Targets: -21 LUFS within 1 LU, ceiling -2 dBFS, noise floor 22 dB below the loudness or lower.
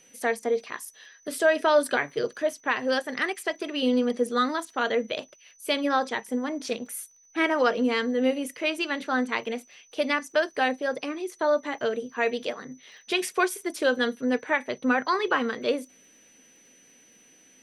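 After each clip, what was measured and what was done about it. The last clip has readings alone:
ticks 31/s; steady tone 6000 Hz; tone level -56 dBFS; loudness -26.5 LUFS; peak -10.0 dBFS; loudness target -21.0 LUFS
-> de-click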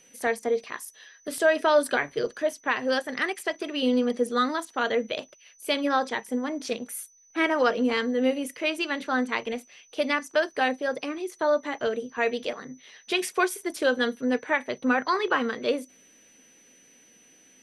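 ticks 0.057/s; steady tone 6000 Hz; tone level -56 dBFS
-> notch 6000 Hz, Q 30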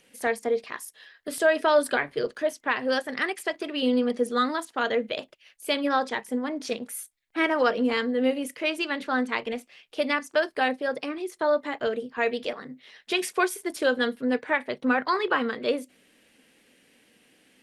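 steady tone none; loudness -27.0 LUFS; peak -10.0 dBFS; loudness target -21.0 LUFS
-> gain +6 dB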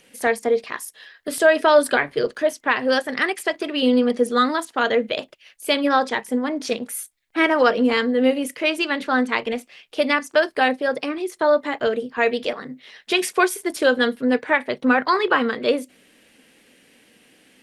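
loudness -20.5 LUFS; peak -4.0 dBFS; noise floor -58 dBFS

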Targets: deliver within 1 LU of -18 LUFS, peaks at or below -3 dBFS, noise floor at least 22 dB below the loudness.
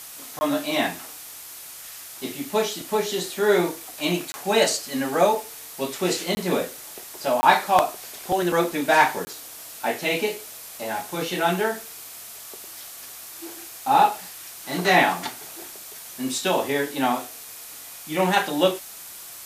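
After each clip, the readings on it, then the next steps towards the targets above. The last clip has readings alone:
dropouts 5; longest dropout 20 ms; noise floor -40 dBFS; noise floor target -46 dBFS; loudness -23.5 LUFS; peak -4.0 dBFS; loudness target -18.0 LUFS
-> interpolate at 0.39/4.32/6.35/7.41/9.25, 20 ms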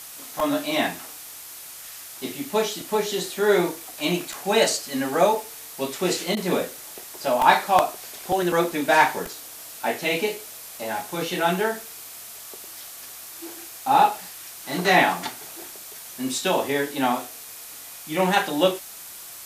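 dropouts 0; noise floor -40 dBFS; noise floor target -46 dBFS
-> noise print and reduce 6 dB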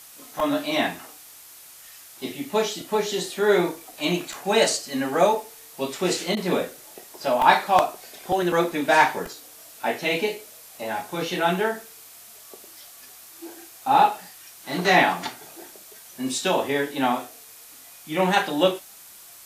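noise floor -46 dBFS; loudness -23.5 LUFS; peak -4.0 dBFS; loudness target -18.0 LUFS
-> gain +5.5 dB; limiter -3 dBFS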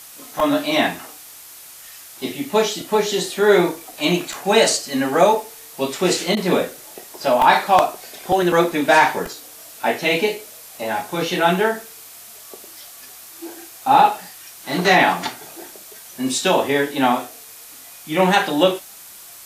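loudness -18.5 LUFS; peak -3.0 dBFS; noise floor -41 dBFS

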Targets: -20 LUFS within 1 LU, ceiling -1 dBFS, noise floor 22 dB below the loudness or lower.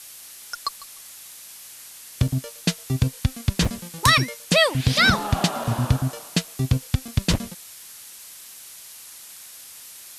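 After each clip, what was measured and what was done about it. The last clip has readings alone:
dropouts 4; longest dropout 3.4 ms; noise floor -43 dBFS; noise floor target -45 dBFS; loudness -22.5 LUFS; peak -5.0 dBFS; loudness target -20.0 LUFS
-> interpolate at 2.28/3.65/5.64/7.08, 3.4 ms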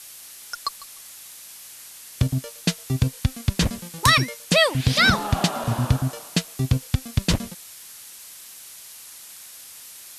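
dropouts 0; noise floor -43 dBFS; noise floor target -45 dBFS
-> denoiser 6 dB, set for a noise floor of -43 dBFS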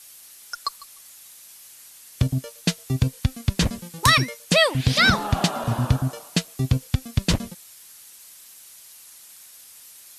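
noise floor -47 dBFS; loudness -22.5 LUFS; peak -5.0 dBFS; loudness target -20.0 LUFS
-> gain +2.5 dB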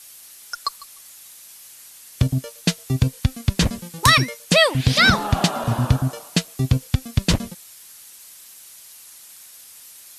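loudness -20.0 LUFS; peak -2.5 dBFS; noise floor -45 dBFS

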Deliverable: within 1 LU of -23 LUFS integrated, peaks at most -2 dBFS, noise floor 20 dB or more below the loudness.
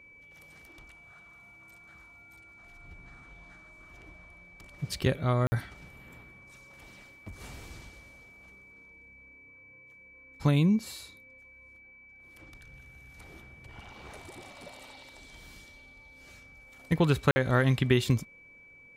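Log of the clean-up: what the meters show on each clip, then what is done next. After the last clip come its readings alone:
dropouts 2; longest dropout 50 ms; steady tone 2300 Hz; tone level -52 dBFS; loudness -27.5 LUFS; peak -8.0 dBFS; loudness target -23.0 LUFS
-> interpolate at 5.47/17.31, 50 ms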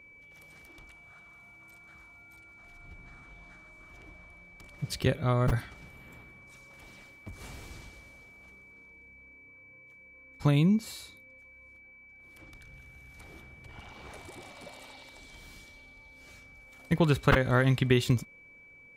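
dropouts 0; steady tone 2300 Hz; tone level -52 dBFS
-> notch 2300 Hz, Q 30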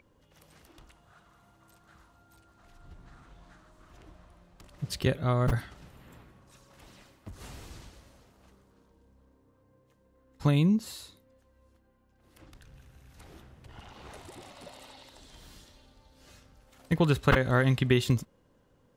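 steady tone none; loudness -27.0 LUFS; peak -8.5 dBFS; loudness target -23.0 LUFS
-> gain +4 dB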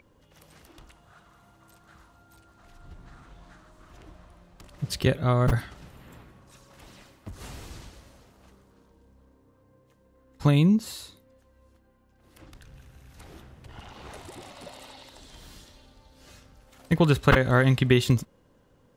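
loudness -23.0 LUFS; peak -4.5 dBFS; noise floor -62 dBFS

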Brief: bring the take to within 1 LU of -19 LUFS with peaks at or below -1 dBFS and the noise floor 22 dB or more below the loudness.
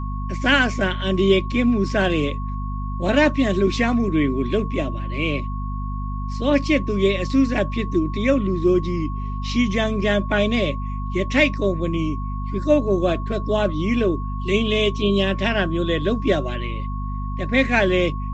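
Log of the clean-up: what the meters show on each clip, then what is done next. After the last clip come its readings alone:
hum 50 Hz; harmonics up to 250 Hz; hum level -24 dBFS; steady tone 1100 Hz; tone level -34 dBFS; loudness -21.5 LUFS; peak -3.5 dBFS; loudness target -19.0 LUFS
-> notches 50/100/150/200/250 Hz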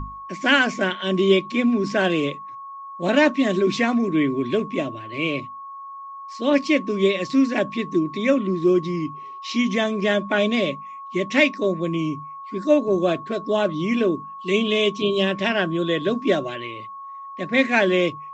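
hum none; steady tone 1100 Hz; tone level -34 dBFS
-> notch 1100 Hz, Q 30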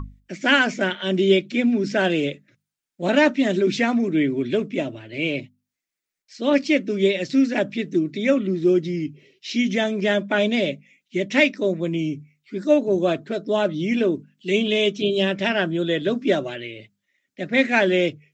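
steady tone none; loudness -21.5 LUFS; peak -4.5 dBFS; loudness target -19.0 LUFS
-> gain +2.5 dB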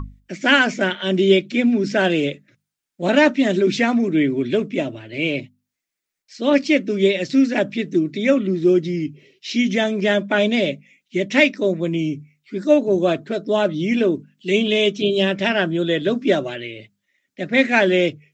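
loudness -19.0 LUFS; peak -2.0 dBFS; noise floor -82 dBFS

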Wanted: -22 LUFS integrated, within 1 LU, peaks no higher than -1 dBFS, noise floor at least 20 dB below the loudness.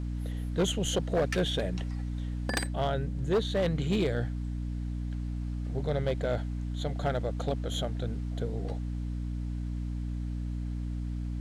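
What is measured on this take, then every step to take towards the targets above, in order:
clipped 1.0%; flat tops at -21.5 dBFS; hum 60 Hz; harmonics up to 300 Hz; hum level -31 dBFS; loudness -32.5 LUFS; peak -21.5 dBFS; loudness target -22.0 LUFS
-> clip repair -21.5 dBFS; notches 60/120/180/240/300 Hz; gain +10.5 dB

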